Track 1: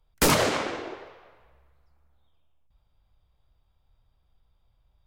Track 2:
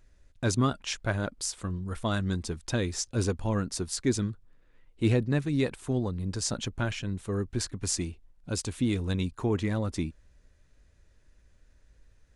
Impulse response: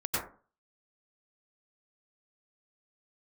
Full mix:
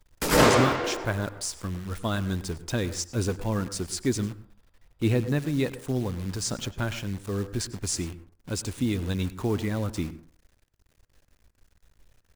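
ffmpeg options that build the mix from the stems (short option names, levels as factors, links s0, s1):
-filter_complex "[0:a]volume=0.944,asplit=2[s0][s1];[s1]volume=0.473[s2];[1:a]acrusher=bits=8:dc=4:mix=0:aa=0.000001,volume=1,asplit=3[s3][s4][s5];[s4]volume=0.0891[s6];[s5]apad=whole_len=223432[s7];[s0][s7]sidechaingate=range=0.0224:threshold=0.00158:ratio=16:detection=peak[s8];[2:a]atrim=start_sample=2205[s9];[s2][s6]amix=inputs=2:normalize=0[s10];[s10][s9]afir=irnorm=-1:irlink=0[s11];[s8][s3][s11]amix=inputs=3:normalize=0"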